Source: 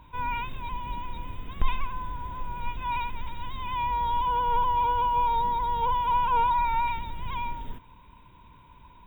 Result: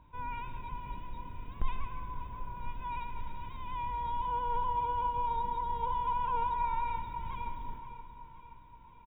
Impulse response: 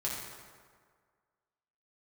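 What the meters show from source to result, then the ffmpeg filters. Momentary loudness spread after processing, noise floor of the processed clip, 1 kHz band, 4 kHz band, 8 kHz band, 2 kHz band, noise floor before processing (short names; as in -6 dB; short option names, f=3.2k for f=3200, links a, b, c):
15 LU, -54 dBFS, -7.5 dB, -13.0 dB, n/a, -11.0 dB, -53 dBFS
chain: -filter_complex "[0:a]highshelf=f=2.2k:g=-10,aecho=1:1:524|1048|1572|2096|2620|3144:0.2|0.116|0.0671|0.0389|0.0226|0.0131,asplit=2[a][b];[1:a]atrim=start_sample=2205,adelay=144[c];[b][c]afir=irnorm=-1:irlink=0,volume=-12.5dB[d];[a][d]amix=inputs=2:normalize=0,volume=-7dB"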